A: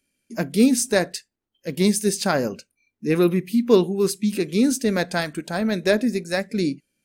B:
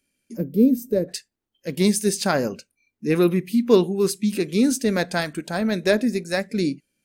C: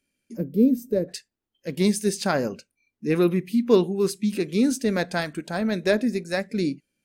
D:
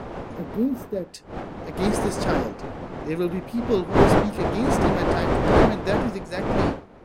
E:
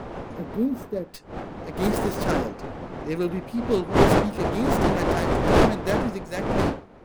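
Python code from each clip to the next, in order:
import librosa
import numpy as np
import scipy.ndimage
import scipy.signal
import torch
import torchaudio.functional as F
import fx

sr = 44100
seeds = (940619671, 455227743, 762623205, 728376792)

y1 = fx.spec_box(x, sr, start_s=0.36, length_s=0.73, low_hz=600.0, high_hz=12000.0, gain_db=-21)
y2 = fx.high_shelf(y1, sr, hz=6000.0, db=-5.0)
y2 = F.gain(torch.from_numpy(y2), -2.0).numpy()
y3 = fx.dmg_wind(y2, sr, seeds[0], corner_hz=620.0, level_db=-19.0)
y3 = F.gain(torch.from_numpy(y3), -5.0).numpy()
y4 = fx.tracing_dist(y3, sr, depth_ms=0.21)
y4 = F.gain(torch.from_numpy(y4), -1.0).numpy()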